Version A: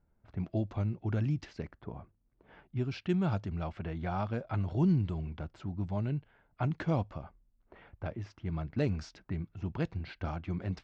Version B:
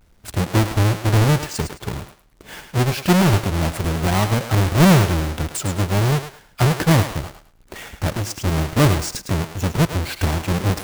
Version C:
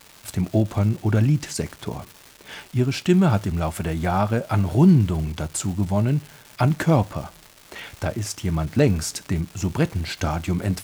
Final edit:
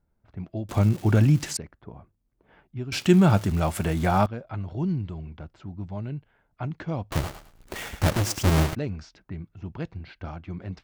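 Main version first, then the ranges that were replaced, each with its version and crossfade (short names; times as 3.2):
A
0.69–1.57 from C
2.92–4.26 from C
7.12–8.75 from B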